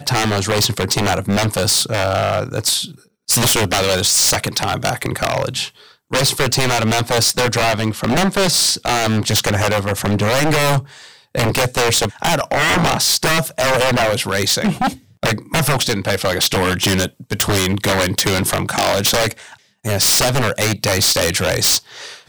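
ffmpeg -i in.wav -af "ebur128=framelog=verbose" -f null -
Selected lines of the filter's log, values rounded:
Integrated loudness:
  I:         -16.1 LUFS
  Threshold: -26.3 LUFS
Loudness range:
  LRA:         1.7 LU
  Threshold: -36.4 LUFS
  LRA low:   -17.2 LUFS
  LRA high:  -15.5 LUFS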